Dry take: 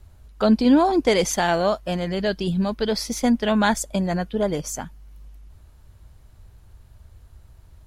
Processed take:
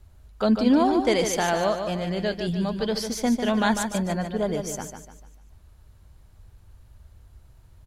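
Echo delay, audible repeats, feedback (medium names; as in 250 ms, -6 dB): 148 ms, 4, 39%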